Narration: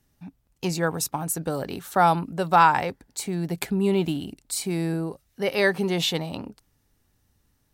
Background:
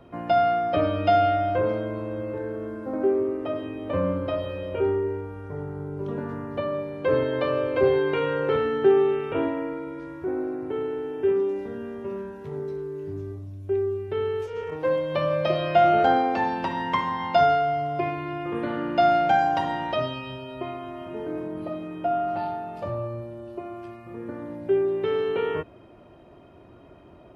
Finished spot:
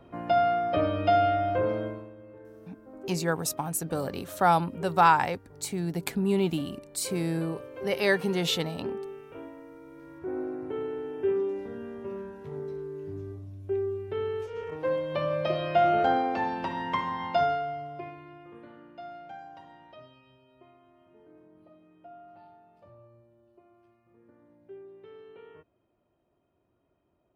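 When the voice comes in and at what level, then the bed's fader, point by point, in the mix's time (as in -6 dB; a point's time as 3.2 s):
2.45 s, -3.0 dB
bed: 1.86 s -3 dB
2.15 s -17.5 dB
9.67 s -17.5 dB
10.37 s -4.5 dB
17.26 s -4.5 dB
18.96 s -24 dB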